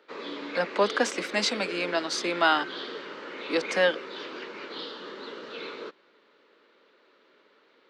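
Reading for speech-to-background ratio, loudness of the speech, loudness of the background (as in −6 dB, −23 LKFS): 10.5 dB, −27.0 LKFS, −37.5 LKFS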